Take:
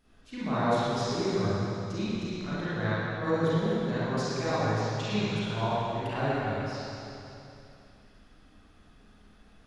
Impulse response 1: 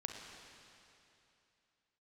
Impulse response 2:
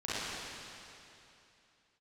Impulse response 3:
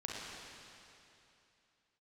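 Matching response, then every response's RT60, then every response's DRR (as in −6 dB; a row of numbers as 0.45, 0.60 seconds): 2; 2.8, 2.8, 2.8 seconds; 1.5, −12.5, −4.5 decibels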